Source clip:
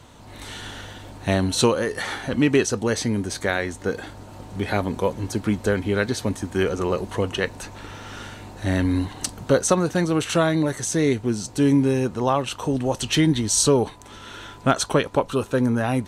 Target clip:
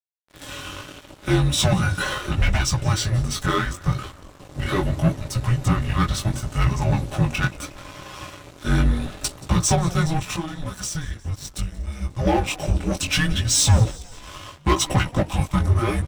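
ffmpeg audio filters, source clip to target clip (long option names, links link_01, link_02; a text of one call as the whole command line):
ffmpeg -i in.wav -filter_complex "[0:a]agate=range=-33dB:threshold=-39dB:ratio=3:detection=peak,bandreject=frequency=50:width_type=h:width=6,bandreject=frequency=100:width_type=h:width=6,bandreject=frequency=150:width_type=h:width=6,bandreject=frequency=200:width_type=h:width=6,bandreject=frequency=250:width_type=h:width=6,bandreject=frequency=300:width_type=h:width=6,aecho=1:1:4.4:0.78,asettb=1/sr,asplit=3[link_01][link_02][link_03];[link_01]atrim=end=10.174[link_04];[link_02]atrim=start=10.17:end=12.19,asetpts=PTS-STARTPTS,afade=type=in:duration=0.004:curve=qsin,afade=type=out:start_time=2.016:duration=0.004:curve=qsin,acompressor=threshold=-26dB:ratio=16[link_05];[link_03]atrim=start=12.186[link_06];[link_04][link_05]acrossfade=duration=0.004:curve1=hsin:curve2=qsin[link_07];[link_07][link_06]acrossfade=duration=0.004:curve1=qsin:curve2=hsin,asoftclip=type=tanh:threshold=-15dB,flanger=delay=15:depth=6.6:speed=0.74,afreqshift=-330,aeval=exprs='sgn(val(0))*max(abs(val(0))-0.00708,0)':channel_layout=same,asplit=6[link_08][link_09][link_10][link_11][link_12][link_13];[link_09]adelay=179,afreqshift=-49,volume=-21dB[link_14];[link_10]adelay=358,afreqshift=-98,volume=-25.4dB[link_15];[link_11]adelay=537,afreqshift=-147,volume=-29.9dB[link_16];[link_12]adelay=716,afreqshift=-196,volume=-34.3dB[link_17];[link_13]adelay=895,afreqshift=-245,volume=-38.7dB[link_18];[link_08][link_14][link_15][link_16][link_17][link_18]amix=inputs=6:normalize=0,volume=6.5dB" out.wav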